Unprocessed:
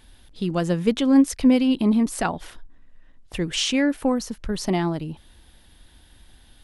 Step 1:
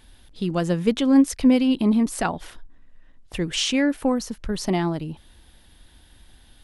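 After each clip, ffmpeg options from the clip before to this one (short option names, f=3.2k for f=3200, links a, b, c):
-af anull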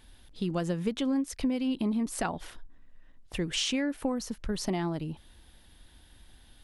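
-af "acompressor=threshold=-22dB:ratio=6,volume=-4dB"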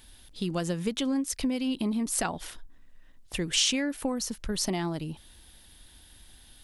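-af "highshelf=f=3.4k:g=10"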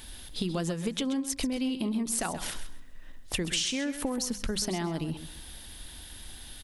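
-filter_complex "[0:a]bandreject=f=50:t=h:w=6,bandreject=f=100:t=h:w=6,bandreject=f=150:t=h:w=6,bandreject=f=200:t=h:w=6,acompressor=threshold=-37dB:ratio=6,asplit=2[a][b];[b]aecho=0:1:131|262|393:0.266|0.0559|0.0117[c];[a][c]amix=inputs=2:normalize=0,volume=8.5dB"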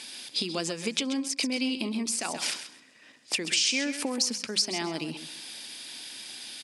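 -af "highshelf=f=5.6k:g=9.5,alimiter=limit=-17.5dB:level=0:latency=1:release=184,highpass=f=180:w=0.5412,highpass=f=180:w=1.3066,equalizer=f=180:t=q:w=4:g=-6,equalizer=f=2.4k:t=q:w=4:g=10,equalizer=f=4.9k:t=q:w=4:g=9,lowpass=f=8.9k:w=0.5412,lowpass=f=8.9k:w=1.3066,volume=1dB"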